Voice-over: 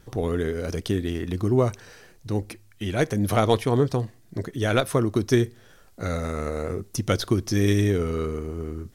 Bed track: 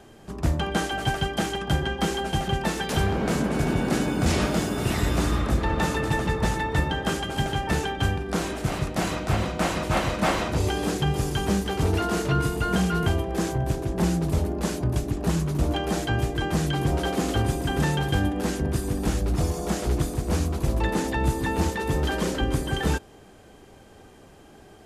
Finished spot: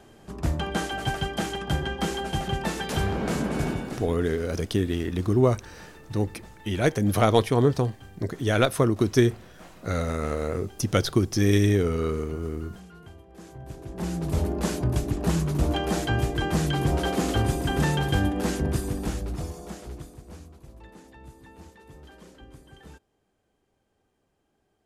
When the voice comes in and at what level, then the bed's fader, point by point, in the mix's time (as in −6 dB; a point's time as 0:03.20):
3.85 s, +0.5 dB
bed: 0:03.66 −2.5 dB
0:04.29 −23.5 dB
0:13.22 −23.5 dB
0:14.44 0 dB
0:18.71 0 dB
0:20.67 −23.5 dB